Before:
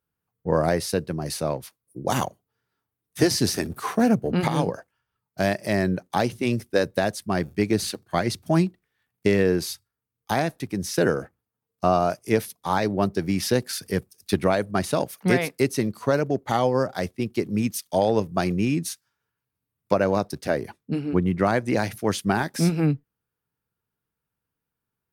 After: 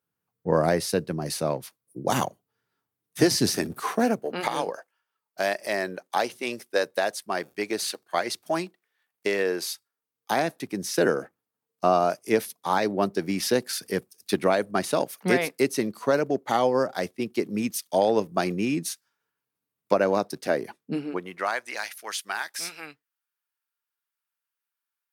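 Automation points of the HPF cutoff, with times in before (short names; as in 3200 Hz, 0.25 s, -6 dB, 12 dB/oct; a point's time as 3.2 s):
3.63 s 130 Hz
4.31 s 490 Hz
9.71 s 490 Hz
10.49 s 230 Hz
21 s 230 Hz
21.18 s 570 Hz
21.74 s 1300 Hz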